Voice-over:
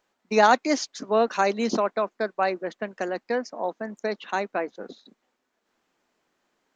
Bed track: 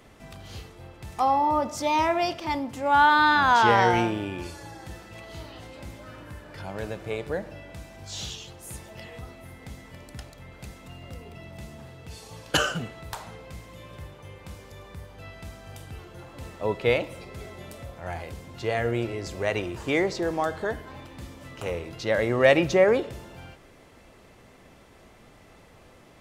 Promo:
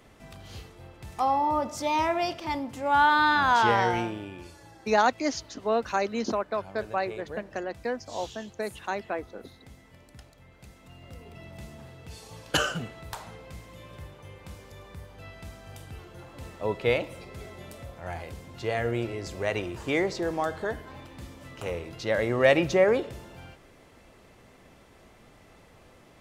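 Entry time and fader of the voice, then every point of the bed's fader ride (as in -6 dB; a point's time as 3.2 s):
4.55 s, -4.5 dB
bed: 3.6 s -2.5 dB
4.44 s -9 dB
10.61 s -9 dB
11.44 s -2 dB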